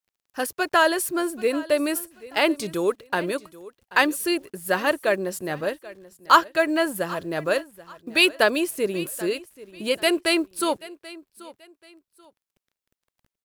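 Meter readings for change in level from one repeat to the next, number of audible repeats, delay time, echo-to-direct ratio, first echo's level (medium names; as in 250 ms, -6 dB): -10.5 dB, 2, 784 ms, -18.5 dB, -19.0 dB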